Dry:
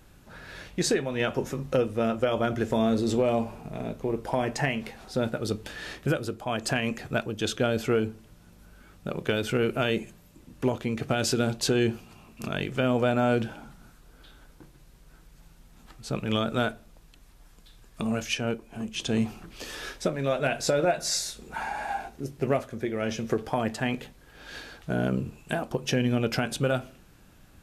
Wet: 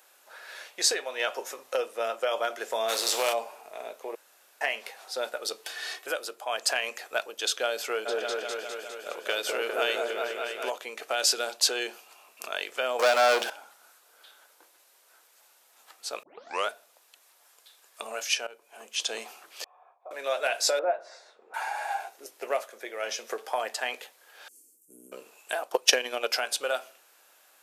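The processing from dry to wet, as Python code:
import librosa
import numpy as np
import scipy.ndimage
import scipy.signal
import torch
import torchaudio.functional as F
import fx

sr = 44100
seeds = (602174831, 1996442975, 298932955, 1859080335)

y = fx.spec_flatten(x, sr, power=0.65, at=(2.88, 3.32), fade=0.02)
y = fx.comb(y, sr, ms=2.7, depth=0.65, at=(5.64, 6.07))
y = fx.echo_opening(y, sr, ms=203, hz=750, octaves=1, feedback_pct=70, wet_db=0, at=(8.05, 10.69), fade=0.02)
y = fx.leveller(y, sr, passes=3, at=(12.99, 13.5))
y = fx.formant_cascade(y, sr, vowel='a', at=(19.64, 20.11))
y = fx.lowpass(y, sr, hz=1100.0, slope=12, at=(20.79, 21.54))
y = fx.highpass(y, sr, hz=200.0, slope=12, at=(22.64, 23.07))
y = fx.ellip_bandstop(y, sr, low_hz=290.0, high_hz=8100.0, order=3, stop_db=40, at=(24.48, 25.12))
y = fx.transient(y, sr, attack_db=11, sustain_db=-4, at=(25.62, 26.28), fade=0.02)
y = fx.edit(y, sr, fx.room_tone_fill(start_s=4.15, length_s=0.46),
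    fx.tape_start(start_s=16.23, length_s=0.46),
    fx.fade_in_from(start_s=18.47, length_s=0.48, curve='qsin', floor_db=-19.5), tone=tone)
y = fx.dynamic_eq(y, sr, hz=4800.0, q=1.9, threshold_db=-47.0, ratio=4.0, max_db=5)
y = scipy.signal.sosfilt(scipy.signal.butter(4, 530.0, 'highpass', fs=sr, output='sos'), y)
y = fx.high_shelf(y, sr, hz=7600.0, db=8.5)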